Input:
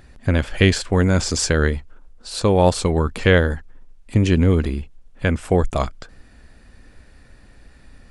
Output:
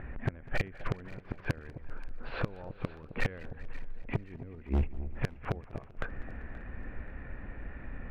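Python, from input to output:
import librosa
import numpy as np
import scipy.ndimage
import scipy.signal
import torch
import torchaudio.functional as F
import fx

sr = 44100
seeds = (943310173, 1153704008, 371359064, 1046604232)

p1 = scipy.signal.sosfilt(scipy.signal.butter(6, 2400.0, 'lowpass', fs=sr, output='sos'), x)
p2 = fx.gate_flip(p1, sr, shuts_db=-12.0, range_db=-37)
p3 = np.clip(p2, -10.0 ** (-28.0 / 20.0), 10.0 ** (-28.0 / 20.0))
p4 = p3 + fx.echo_alternate(p3, sr, ms=264, hz=820.0, feedback_pct=58, wet_db=-13, dry=0)
p5 = fx.echo_warbled(p4, sr, ms=195, feedback_pct=67, rate_hz=2.8, cents=109, wet_db=-20.5)
y = p5 * 10.0 ** (5.0 / 20.0)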